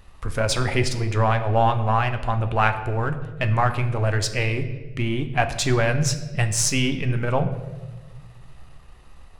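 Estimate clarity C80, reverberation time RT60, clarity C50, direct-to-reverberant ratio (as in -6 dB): 12.5 dB, 1.3 s, 11.0 dB, 7.0 dB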